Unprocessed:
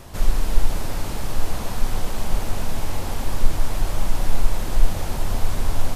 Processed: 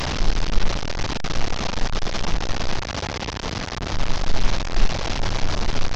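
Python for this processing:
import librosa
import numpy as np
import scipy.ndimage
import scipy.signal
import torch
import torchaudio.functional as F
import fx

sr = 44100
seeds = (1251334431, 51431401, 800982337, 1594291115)

y = fx.delta_mod(x, sr, bps=32000, step_db=-15.5)
y = fx.highpass(y, sr, hz=53.0, slope=12, at=(2.81, 3.92))
y = y * 10.0 ** (-2.5 / 20.0)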